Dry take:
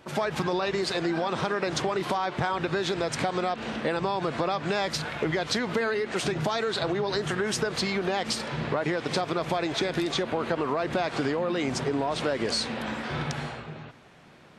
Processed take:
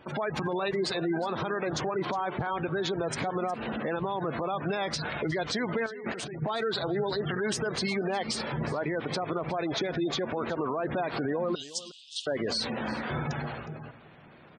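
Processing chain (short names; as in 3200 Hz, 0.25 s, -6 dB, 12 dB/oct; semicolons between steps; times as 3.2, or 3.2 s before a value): 11.55–12.27 steep high-pass 2900 Hz 72 dB/oct; spectral gate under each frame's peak -20 dB strong; dynamic EQ 9600 Hz, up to +4 dB, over -46 dBFS, Q 0.75; limiter -21.5 dBFS, peak gain reduction 7.5 dB; 5.86–6.42 negative-ratio compressor -38 dBFS, ratio -1; echo 0.363 s -18 dB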